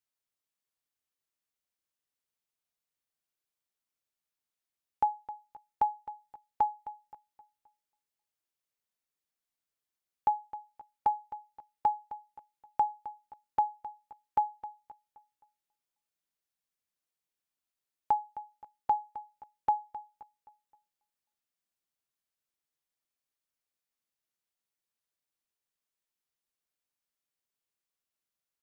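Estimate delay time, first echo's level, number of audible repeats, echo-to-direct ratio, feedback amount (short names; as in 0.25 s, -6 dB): 0.262 s, -15.0 dB, 3, -14.0 dB, 40%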